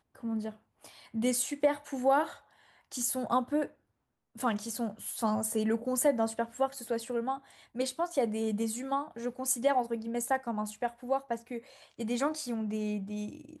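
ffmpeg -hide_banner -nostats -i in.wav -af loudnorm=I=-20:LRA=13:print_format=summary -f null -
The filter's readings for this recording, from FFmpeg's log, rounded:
Input Integrated:    -32.8 LUFS
Input True Peak:     -14.9 dBTP
Input LRA:             3.4 LU
Input Threshold:     -43.2 LUFS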